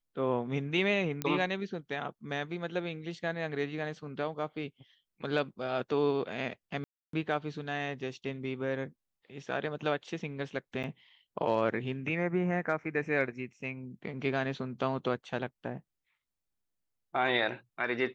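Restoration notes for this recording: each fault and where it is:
0:01.22: click −16 dBFS
0:06.84–0:07.13: drop-out 293 ms
0:10.83–0:10.84: drop-out 8.7 ms

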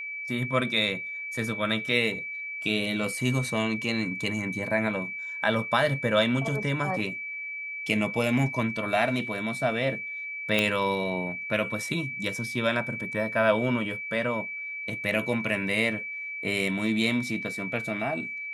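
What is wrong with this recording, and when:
whistle 2,300 Hz −33 dBFS
0:10.59: click −10 dBFS

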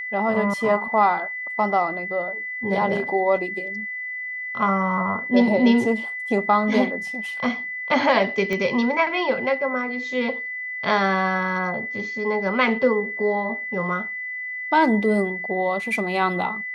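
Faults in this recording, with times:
whistle 2,000 Hz −28 dBFS
0:08.53: click −13 dBFS

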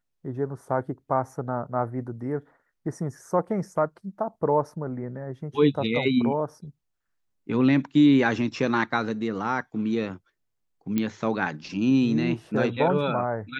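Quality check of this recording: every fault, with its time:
0:10.98: click −13 dBFS

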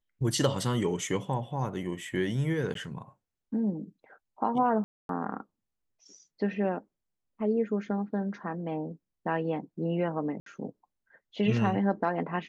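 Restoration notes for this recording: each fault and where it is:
0:02.74–0:02.75: drop-out 13 ms
0:04.84–0:05.09: drop-out 252 ms
0:10.40–0:10.46: drop-out 63 ms

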